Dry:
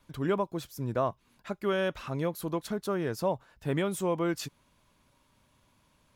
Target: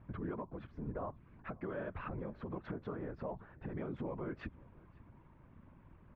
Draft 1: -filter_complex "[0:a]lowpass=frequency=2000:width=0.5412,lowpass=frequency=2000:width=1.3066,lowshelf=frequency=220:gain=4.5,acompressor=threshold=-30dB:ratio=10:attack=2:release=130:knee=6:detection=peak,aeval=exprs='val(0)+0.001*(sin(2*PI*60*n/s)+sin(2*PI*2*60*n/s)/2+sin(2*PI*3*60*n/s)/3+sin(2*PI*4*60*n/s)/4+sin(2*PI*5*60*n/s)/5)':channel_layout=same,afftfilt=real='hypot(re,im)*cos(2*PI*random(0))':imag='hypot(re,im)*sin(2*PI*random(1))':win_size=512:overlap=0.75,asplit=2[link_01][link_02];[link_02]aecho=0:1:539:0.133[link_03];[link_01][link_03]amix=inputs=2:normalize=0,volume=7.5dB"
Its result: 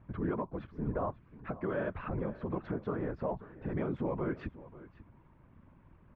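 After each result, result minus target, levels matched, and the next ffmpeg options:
downward compressor: peak gain reduction −7 dB; echo-to-direct +7.5 dB
-filter_complex "[0:a]lowpass=frequency=2000:width=0.5412,lowpass=frequency=2000:width=1.3066,lowshelf=frequency=220:gain=4.5,acompressor=threshold=-38dB:ratio=10:attack=2:release=130:knee=6:detection=peak,aeval=exprs='val(0)+0.001*(sin(2*PI*60*n/s)+sin(2*PI*2*60*n/s)/2+sin(2*PI*3*60*n/s)/3+sin(2*PI*4*60*n/s)/4+sin(2*PI*5*60*n/s)/5)':channel_layout=same,afftfilt=real='hypot(re,im)*cos(2*PI*random(0))':imag='hypot(re,im)*sin(2*PI*random(1))':win_size=512:overlap=0.75,asplit=2[link_01][link_02];[link_02]aecho=0:1:539:0.133[link_03];[link_01][link_03]amix=inputs=2:normalize=0,volume=7.5dB"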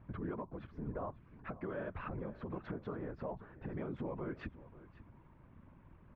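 echo-to-direct +7.5 dB
-filter_complex "[0:a]lowpass=frequency=2000:width=0.5412,lowpass=frequency=2000:width=1.3066,lowshelf=frequency=220:gain=4.5,acompressor=threshold=-38dB:ratio=10:attack=2:release=130:knee=6:detection=peak,aeval=exprs='val(0)+0.001*(sin(2*PI*60*n/s)+sin(2*PI*2*60*n/s)/2+sin(2*PI*3*60*n/s)/3+sin(2*PI*4*60*n/s)/4+sin(2*PI*5*60*n/s)/5)':channel_layout=same,afftfilt=real='hypot(re,im)*cos(2*PI*random(0))':imag='hypot(re,im)*sin(2*PI*random(1))':win_size=512:overlap=0.75,asplit=2[link_01][link_02];[link_02]aecho=0:1:539:0.0562[link_03];[link_01][link_03]amix=inputs=2:normalize=0,volume=7.5dB"

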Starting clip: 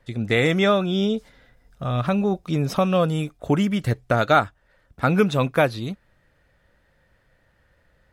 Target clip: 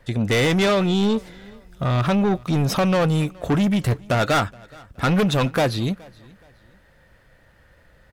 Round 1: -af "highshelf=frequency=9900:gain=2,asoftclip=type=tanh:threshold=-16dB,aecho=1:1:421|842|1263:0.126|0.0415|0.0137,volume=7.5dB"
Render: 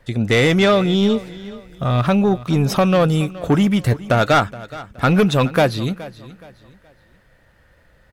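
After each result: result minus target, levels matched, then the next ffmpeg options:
echo-to-direct +7 dB; soft clipping: distortion −5 dB
-af "highshelf=frequency=9900:gain=2,asoftclip=type=tanh:threshold=-16dB,aecho=1:1:421|842:0.0562|0.0186,volume=7.5dB"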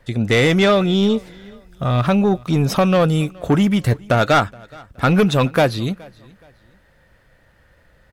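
soft clipping: distortion −5 dB
-af "highshelf=frequency=9900:gain=2,asoftclip=type=tanh:threshold=-23dB,aecho=1:1:421|842:0.0562|0.0186,volume=7.5dB"

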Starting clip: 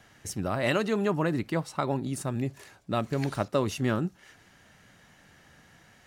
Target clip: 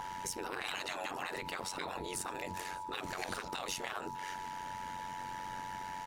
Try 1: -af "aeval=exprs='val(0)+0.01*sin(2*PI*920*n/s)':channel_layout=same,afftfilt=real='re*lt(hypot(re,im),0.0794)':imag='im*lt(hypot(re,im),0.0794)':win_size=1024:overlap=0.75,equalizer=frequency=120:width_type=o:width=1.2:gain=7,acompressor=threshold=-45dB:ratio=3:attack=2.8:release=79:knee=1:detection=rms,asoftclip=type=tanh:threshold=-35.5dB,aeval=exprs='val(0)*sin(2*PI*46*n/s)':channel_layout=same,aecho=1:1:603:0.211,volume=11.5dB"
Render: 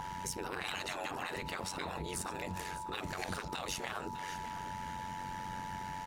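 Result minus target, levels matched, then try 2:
125 Hz band +6.5 dB; echo-to-direct +9.5 dB
-af "aeval=exprs='val(0)+0.01*sin(2*PI*920*n/s)':channel_layout=same,afftfilt=real='re*lt(hypot(re,im),0.0794)':imag='im*lt(hypot(re,im),0.0794)':win_size=1024:overlap=0.75,equalizer=frequency=120:width_type=o:width=1.2:gain=-3.5,acompressor=threshold=-45dB:ratio=3:attack=2.8:release=79:knee=1:detection=rms,asoftclip=type=tanh:threshold=-35.5dB,aeval=exprs='val(0)*sin(2*PI*46*n/s)':channel_layout=same,aecho=1:1:603:0.0708,volume=11.5dB"

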